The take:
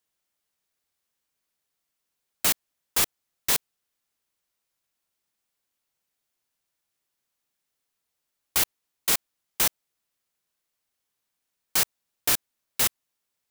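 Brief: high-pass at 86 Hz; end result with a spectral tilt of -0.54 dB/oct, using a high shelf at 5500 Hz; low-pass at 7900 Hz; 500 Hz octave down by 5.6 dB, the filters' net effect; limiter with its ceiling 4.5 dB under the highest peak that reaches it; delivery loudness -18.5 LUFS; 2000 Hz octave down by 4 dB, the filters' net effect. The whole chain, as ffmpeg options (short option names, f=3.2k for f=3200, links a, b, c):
-af "highpass=86,lowpass=7.9k,equalizer=f=500:t=o:g=-7,equalizer=f=2k:t=o:g=-5.5,highshelf=f=5.5k:g=5.5,volume=12.5dB,alimiter=limit=-3.5dB:level=0:latency=1"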